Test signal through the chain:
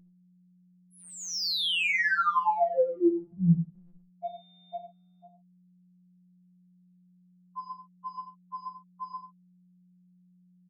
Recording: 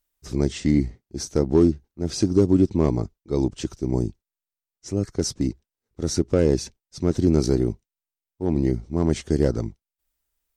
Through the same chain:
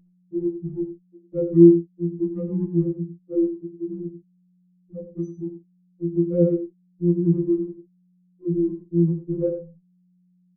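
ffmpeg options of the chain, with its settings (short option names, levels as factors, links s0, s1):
-filter_complex "[0:a]bandreject=f=60:t=h:w=6,bandreject=f=120:t=h:w=6,bandreject=f=180:t=h:w=6,bandreject=f=240:t=h:w=6,bandreject=f=300:t=h:w=6,bandreject=f=360:t=h:w=6,afftfilt=real='re*gte(hypot(re,im),0.316)':imag='im*gte(hypot(re,im),0.316)':win_size=1024:overlap=0.75,acrossover=split=6900[s0][s1];[s1]acompressor=threshold=0.0112:ratio=4:attack=1:release=60[s2];[s0][s2]amix=inputs=2:normalize=0,aeval=exprs='val(0)+0.00251*(sin(2*PI*60*n/s)+sin(2*PI*2*60*n/s)/2+sin(2*PI*3*60*n/s)/3+sin(2*PI*4*60*n/s)/4+sin(2*PI*5*60*n/s)/5)':c=same,adynamicsmooth=sensitivity=1.5:basefreq=3700,asplit=2[s3][s4];[s4]adelay=41,volume=0.266[s5];[s3][s5]amix=inputs=2:normalize=0,asplit=2[s6][s7];[s7]aecho=0:1:91:0.316[s8];[s6][s8]amix=inputs=2:normalize=0,afftfilt=real='re*2.83*eq(mod(b,8),0)':imag='im*2.83*eq(mod(b,8),0)':win_size=2048:overlap=0.75,volume=1.19"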